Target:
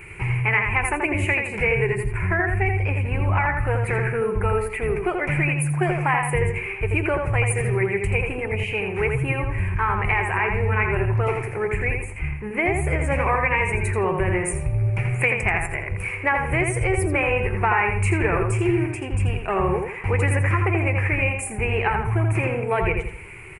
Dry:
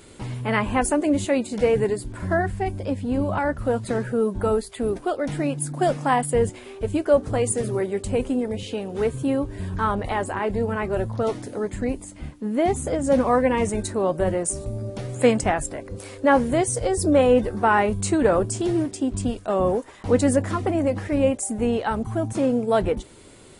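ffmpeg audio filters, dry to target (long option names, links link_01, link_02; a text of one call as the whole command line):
ffmpeg -i in.wav -filter_complex "[0:a]firequalizer=gain_entry='entry(150,0);entry(250,-24);entry(360,-3);entry(560,-15);entry(870,-2);entry(1400,-3);entry(2400,14);entry(3500,-24);entry(6600,-19);entry(10000,-7)':delay=0.05:min_phase=1,acompressor=threshold=-27dB:ratio=4,asplit=2[link_01][link_02];[link_02]adelay=83,lowpass=frequency=3400:poles=1,volume=-4dB,asplit=2[link_03][link_04];[link_04]adelay=83,lowpass=frequency=3400:poles=1,volume=0.36,asplit=2[link_05][link_06];[link_06]adelay=83,lowpass=frequency=3400:poles=1,volume=0.36,asplit=2[link_07][link_08];[link_08]adelay=83,lowpass=frequency=3400:poles=1,volume=0.36,asplit=2[link_09][link_10];[link_10]adelay=83,lowpass=frequency=3400:poles=1,volume=0.36[link_11];[link_03][link_05][link_07][link_09][link_11]amix=inputs=5:normalize=0[link_12];[link_01][link_12]amix=inputs=2:normalize=0,volume=8dB" out.wav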